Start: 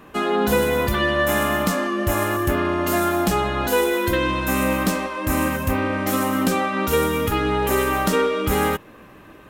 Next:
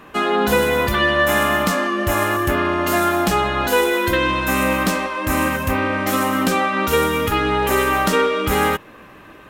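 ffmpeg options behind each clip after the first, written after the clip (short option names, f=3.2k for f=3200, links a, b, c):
-af "equalizer=f=2k:w=0.33:g=5"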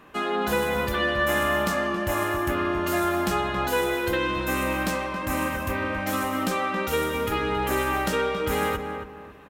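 -filter_complex "[0:a]asplit=2[a][b];[b]adelay=274,lowpass=f=1.5k:p=1,volume=-6dB,asplit=2[c][d];[d]adelay=274,lowpass=f=1.5k:p=1,volume=0.34,asplit=2[e][f];[f]adelay=274,lowpass=f=1.5k:p=1,volume=0.34,asplit=2[g][h];[h]adelay=274,lowpass=f=1.5k:p=1,volume=0.34[i];[a][c][e][g][i]amix=inputs=5:normalize=0,volume=-8dB"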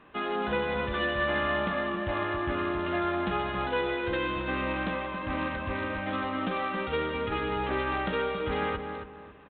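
-af "volume=-4.5dB" -ar 8000 -c:a adpcm_ima_wav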